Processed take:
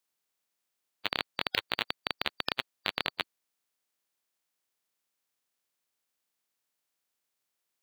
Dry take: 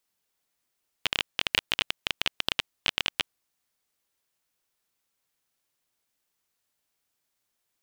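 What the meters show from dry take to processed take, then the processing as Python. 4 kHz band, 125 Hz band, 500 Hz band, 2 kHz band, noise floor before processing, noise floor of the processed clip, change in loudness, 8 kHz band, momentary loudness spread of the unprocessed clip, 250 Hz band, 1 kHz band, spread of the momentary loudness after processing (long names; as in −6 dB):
−5.5 dB, −4.0 dB, +1.0 dB, −3.5 dB, −80 dBFS, −84 dBFS, −4.5 dB, −13.5 dB, 5 LU, −0.5 dB, +1.0 dB, 5 LU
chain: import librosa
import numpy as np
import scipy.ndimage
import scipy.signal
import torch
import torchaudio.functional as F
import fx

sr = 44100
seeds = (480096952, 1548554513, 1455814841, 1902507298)

y = fx.spec_quant(x, sr, step_db=30)
y = fx.highpass(y, sr, hz=190.0, slope=6)
y = y * librosa.db_to_amplitude(-3.5)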